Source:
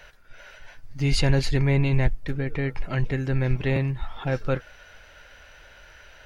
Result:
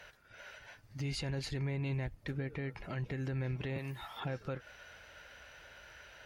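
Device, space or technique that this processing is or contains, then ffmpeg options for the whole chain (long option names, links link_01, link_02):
podcast mastering chain: -filter_complex "[0:a]asettb=1/sr,asplit=3[link_01][link_02][link_03];[link_01]atrim=end=3.784[link_04];[link_02]atrim=start=3.78:end=4.2,asetpts=PTS-STARTPTS,afade=type=in:duration=0.004:curve=qsin,afade=type=out:start_time=0.416:duration=0.004:curve=qsin,aemphasis=mode=production:type=bsi[link_05];[link_03]atrim=start=4.196[link_06];[link_04][link_05]acrossfade=duration=0.004:curve1=hsin:curve2=qsin[link_07];[link_07][link_06]acrossfade=duration=0.004:curve1=qsin:curve2=hsin,highpass=65,acompressor=threshold=-25dB:ratio=6,alimiter=level_in=1.5dB:limit=-24dB:level=0:latency=1:release=174,volume=-1.5dB,volume=-4dB" -ar 44100 -c:a libmp3lame -b:a 96k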